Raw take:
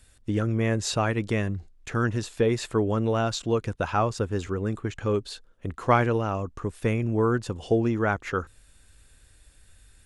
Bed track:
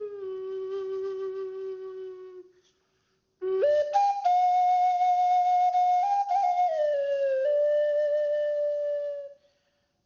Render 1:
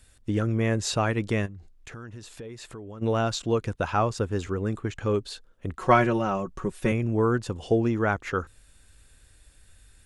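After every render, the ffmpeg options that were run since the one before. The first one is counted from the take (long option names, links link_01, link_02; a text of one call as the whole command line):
ffmpeg -i in.wav -filter_complex "[0:a]asplit=3[link_01][link_02][link_03];[link_01]afade=type=out:start_time=1.45:duration=0.02[link_04];[link_02]acompressor=threshold=-40dB:ratio=4:attack=3.2:release=140:knee=1:detection=peak,afade=type=in:start_time=1.45:duration=0.02,afade=type=out:start_time=3.01:duration=0.02[link_05];[link_03]afade=type=in:start_time=3.01:duration=0.02[link_06];[link_04][link_05][link_06]amix=inputs=3:normalize=0,asettb=1/sr,asplit=3[link_07][link_08][link_09];[link_07]atrim=end=5.794[link_10];[link_08]atrim=start=5.79:end=6.92,asetpts=PTS-STARTPTS,afade=type=in:duration=0.004:curve=qsin,afade=type=out:start_time=1.126:duration=0.004:curve=qsin,aecho=1:1:5.4:0.77,atrim=end_sample=49833[link_11];[link_09]atrim=start=6.916[link_12];[link_10][link_11]acrossfade=duration=0.004:curve1=hsin:curve2=qsin[link_13];[link_13][link_12]acrossfade=duration=0.004:curve1=qsin:curve2=hsin" out.wav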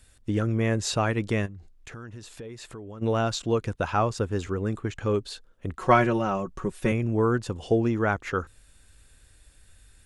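ffmpeg -i in.wav -af anull out.wav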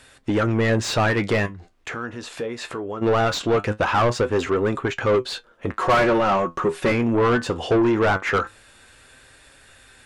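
ffmpeg -i in.wav -filter_complex "[0:a]flanger=delay=7.4:depth=5.3:regen=62:speed=0.21:shape=sinusoidal,asplit=2[link_01][link_02];[link_02]highpass=frequency=720:poles=1,volume=29dB,asoftclip=type=tanh:threshold=-9dB[link_03];[link_01][link_03]amix=inputs=2:normalize=0,lowpass=frequency=1700:poles=1,volume=-6dB" out.wav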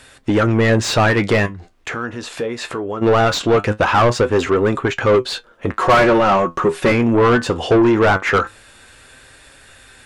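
ffmpeg -i in.wav -af "volume=5.5dB" out.wav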